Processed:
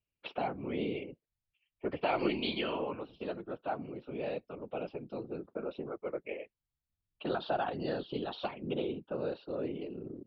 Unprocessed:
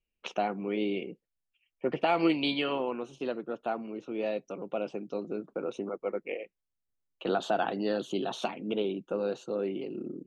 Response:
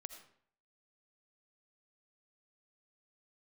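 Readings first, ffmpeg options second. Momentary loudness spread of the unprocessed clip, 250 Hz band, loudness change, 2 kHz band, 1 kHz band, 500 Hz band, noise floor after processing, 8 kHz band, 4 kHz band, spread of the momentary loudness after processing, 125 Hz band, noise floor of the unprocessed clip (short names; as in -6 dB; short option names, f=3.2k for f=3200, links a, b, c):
9 LU, -5.5 dB, -4.5 dB, -4.5 dB, -4.5 dB, -4.5 dB, under -85 dBFS, n/a, -4.5 dB, 9 LU, -0.5 dB, -85 dBFS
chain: -af "aresample=11025,aresample=44100,afftfilt=real='hypot(re,im)*cos(2*PI*random(0))':imag='hypot(re,im)*sin(2*PI*random(1))':win_size=512:overlap=0.75,volume=1.5dB"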